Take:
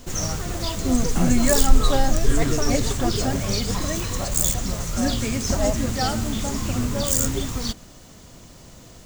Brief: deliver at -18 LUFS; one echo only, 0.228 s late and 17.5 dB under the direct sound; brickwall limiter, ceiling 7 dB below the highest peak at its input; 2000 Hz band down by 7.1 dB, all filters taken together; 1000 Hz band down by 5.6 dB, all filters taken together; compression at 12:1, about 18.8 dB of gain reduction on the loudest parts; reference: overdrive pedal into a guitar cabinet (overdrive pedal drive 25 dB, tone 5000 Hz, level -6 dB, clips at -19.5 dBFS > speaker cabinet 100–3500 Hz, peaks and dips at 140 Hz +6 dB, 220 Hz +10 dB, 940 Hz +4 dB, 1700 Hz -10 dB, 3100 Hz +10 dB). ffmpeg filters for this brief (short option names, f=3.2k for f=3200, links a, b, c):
-filter_complex "[0:a]equalizer=f=1k:t=o:g=-9,equalizer=f=2k:t=o:g=-3.5,acompressor=threshold=-25dB:ratio=12,alimiter=limit=-21dB:level=0:latency=1,aecho=1:1:228:0.133,asplit=2[a][b];[b]highpass=f=720:p=1,volume=25dB,asoftclip=type=tanh:threshold=-19.5dB[c];[a][c]amix=inputs=2:normalize=0,lowpass=f=5k:p=1,volume=-6dB,highpass=100,equalizer=f=140:t=q:w=4:g=6,equalizer=f=220:t=q:w=4:g=10,equalizer=f=940:t=q:w=4:g=4,equalizer=f=1.7k:t=q:w=4:g=-10,equalizer=f=3.1k:t=q:w=4:g=10,lowpass=f=3.5k:w=0.5412,lowpass=f=3.5k:w=1.3066,volume=9dB"